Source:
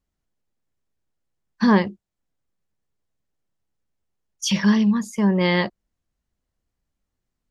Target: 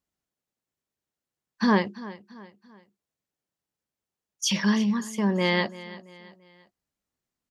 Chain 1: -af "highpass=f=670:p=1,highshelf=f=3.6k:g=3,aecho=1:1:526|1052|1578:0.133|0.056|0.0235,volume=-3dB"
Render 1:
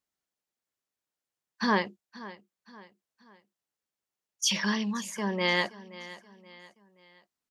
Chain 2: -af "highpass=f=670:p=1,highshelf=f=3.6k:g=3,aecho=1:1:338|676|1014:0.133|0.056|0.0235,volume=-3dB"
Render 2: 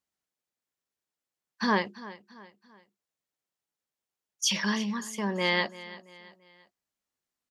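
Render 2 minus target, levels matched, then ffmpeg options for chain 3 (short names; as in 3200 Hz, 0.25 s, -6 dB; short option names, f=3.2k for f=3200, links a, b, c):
250 Hz band -4.0 dB
-af "highpass=f=200:p=1,highshelf=f=3.6k:g=3,aecho=1:1:338|676|1014:0.133|0.056|0.0235,volume=-3dB"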